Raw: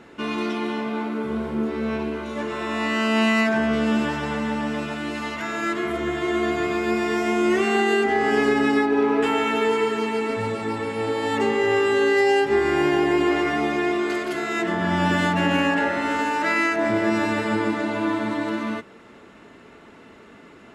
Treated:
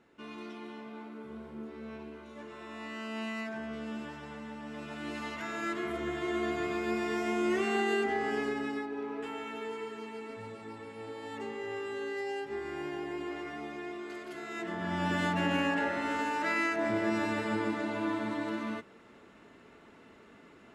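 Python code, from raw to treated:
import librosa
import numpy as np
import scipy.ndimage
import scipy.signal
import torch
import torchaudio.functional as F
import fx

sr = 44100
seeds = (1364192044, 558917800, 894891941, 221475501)

y = fx.gain(x, sr, db=fx.line((4.61, -18.0), (5.1, -9.5), (8.03, -9.5), (8.94, -18.0), (14.04, -18.0), (15.28, -9.0)))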